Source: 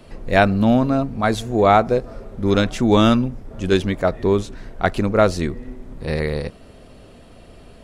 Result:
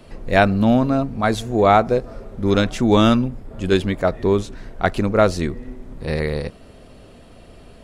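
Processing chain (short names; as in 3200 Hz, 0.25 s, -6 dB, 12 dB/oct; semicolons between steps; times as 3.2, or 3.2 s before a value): 3.27–3.98 notch 5900 Hz, Q 6.5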